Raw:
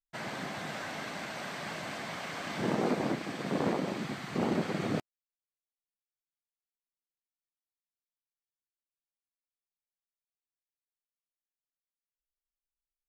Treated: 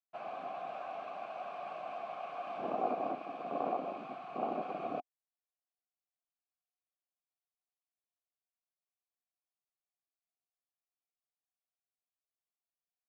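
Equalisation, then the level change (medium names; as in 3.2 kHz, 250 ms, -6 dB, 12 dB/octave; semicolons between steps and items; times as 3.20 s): treble shelf 2.7 kHz -8.5 dB; dynamic bell 270 Hz, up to +6 dB, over -46 dBFS, Q 2.9; vowel filter a; +7.0 dB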